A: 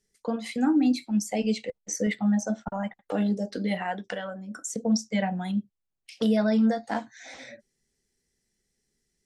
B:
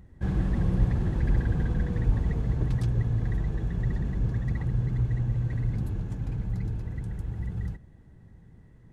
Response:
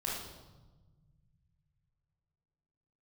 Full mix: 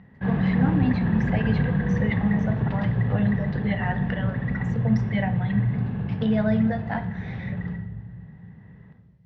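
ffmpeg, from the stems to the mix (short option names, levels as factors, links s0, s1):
-filter_complex "[0:a]volume=0.794,asplit=2[s0][s1];[s1]volume=0.2[s2];[1:a]volume=1.33,asplit=2[s3][s4];[s4]volume=0.668[s5];[2:a]atrim=start_sample=2205[s6];[s2][s5]amix=inputs=2:normalize=0[s7];[s7][s6]afir=irnorm=-1:irlink=0[s8];[s0][s3][s8]amix=inputs=3:normalize=0,highpass=170,equalizer=f=190:t=q:w=4:g=5,equalizer=f=330:t=q:w=4:g=-9,equalizer=f=1800:t=q:w=4:g=5,lowpass=f=3300:w=0.5412,lowpass=f=3300:w=1.3066"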